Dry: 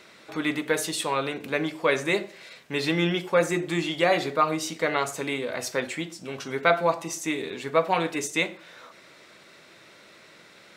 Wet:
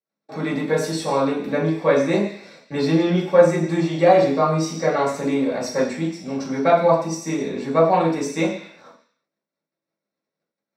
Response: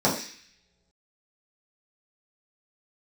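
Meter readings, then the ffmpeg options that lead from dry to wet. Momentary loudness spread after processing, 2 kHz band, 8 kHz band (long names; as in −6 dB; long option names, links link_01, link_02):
11 LU, −2.0 dB, −0.5 dB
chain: -filter_complex "[0:a]agate=range=-47dB:threshold=-46dB:ratio=16:detection=peak[link_01];[1:a]atrim=start_sample=2205,afade=type=out:start_time=0.42:duration=0.01,atrim=end_sample=18963[link_02];[link_01][link_02]afir=irnorm=-1:irlink=0,volume=-12.5dB"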